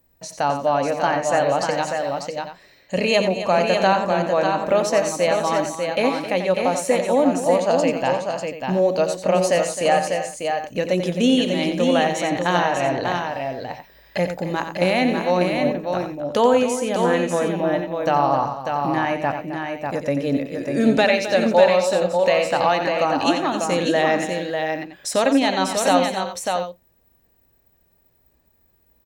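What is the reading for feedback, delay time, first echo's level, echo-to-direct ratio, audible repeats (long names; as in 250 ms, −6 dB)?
repeats not evenly spaced, 89 ms, −8.5 dB, −2.5 dB, 5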